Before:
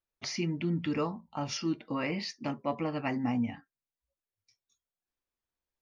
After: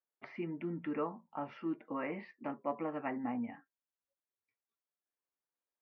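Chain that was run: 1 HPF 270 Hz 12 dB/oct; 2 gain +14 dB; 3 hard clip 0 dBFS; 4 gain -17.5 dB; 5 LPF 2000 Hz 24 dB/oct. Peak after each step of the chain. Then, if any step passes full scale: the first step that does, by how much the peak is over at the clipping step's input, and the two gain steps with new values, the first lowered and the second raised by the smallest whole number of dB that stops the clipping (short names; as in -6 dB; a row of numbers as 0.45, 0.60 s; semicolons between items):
-19.5, -5.5, -5.5, -23.0, -23.5 dBFS; no overload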